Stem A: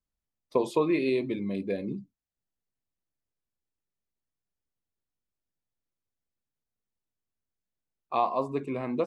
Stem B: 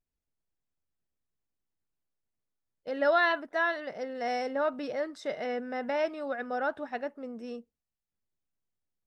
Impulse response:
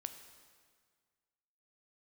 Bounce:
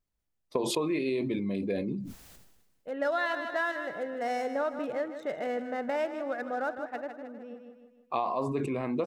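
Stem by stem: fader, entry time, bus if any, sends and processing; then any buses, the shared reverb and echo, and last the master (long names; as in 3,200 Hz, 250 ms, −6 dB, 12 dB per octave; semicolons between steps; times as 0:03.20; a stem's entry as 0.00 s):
+0.5 dB, 0.00 s, send −23 dB, no echo send, level that may fall only so fast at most 49 dB per second
+1.0 dB, 0.00 s, no send, echo send −11.5 dB, adaptive Wiener filter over 9 samples; automatic ducking −9 dB, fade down 1.80 s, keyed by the first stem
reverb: on, RT60 1.8 s, pre-delay 8 ms
echo: repeating echo 156 ms, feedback 49%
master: downward compressor 6 to 1, threshold −26 dBFS, peak gain reduction 8 dB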